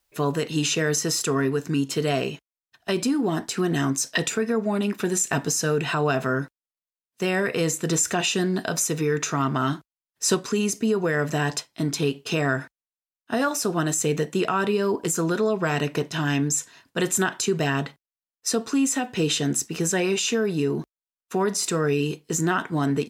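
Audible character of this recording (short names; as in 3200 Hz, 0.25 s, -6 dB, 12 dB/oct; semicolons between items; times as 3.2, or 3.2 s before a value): noise floor -96 dBFS; spectral tilt -4.0 dB/oct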